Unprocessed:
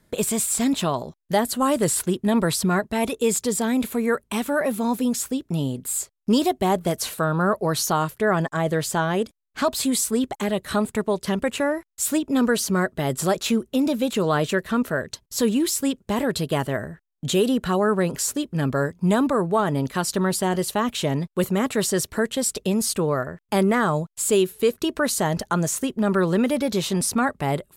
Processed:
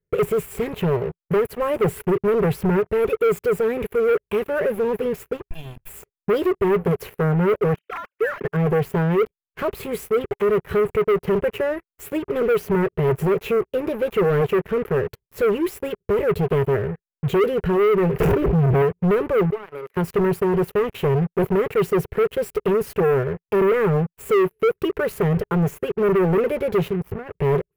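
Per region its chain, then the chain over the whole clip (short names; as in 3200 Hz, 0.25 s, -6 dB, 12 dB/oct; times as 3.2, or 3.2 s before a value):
5.43–5.89 minimum comb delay 2.9 ms + passive tone stack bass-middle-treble 10-0-10 + comb 1.2 ms, depth 87%
7.74–8.45 sine-wave speech + bell 570 Hz -14 dB 1.4 oct
18.2–18.82 median filter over 41 samples + bell 160 Hz +6.5 dB 0.49 oct + fast leveller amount 100%
19.5–19.97 HPF 770 Hz + bell 3000 Hz -5.5 dB 0.44 oct + compressor 2.5:1, threshold -36 dBFS
26.88–27.33 tilt shelf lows +6.5 dB, about 640 Hz + compressor, threshold -28 dBFS
whole clip: EQ curve 170 Hz 0 dB, 270 Hz -23 dB, 410 Hz +9 dB, 680 Hz -15 dB, 2500 Hz -8 dB, 15000 Hz -18 dB; sample leveller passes 5; band shelf 5700 Hz -15 dB; gain -8.5 dB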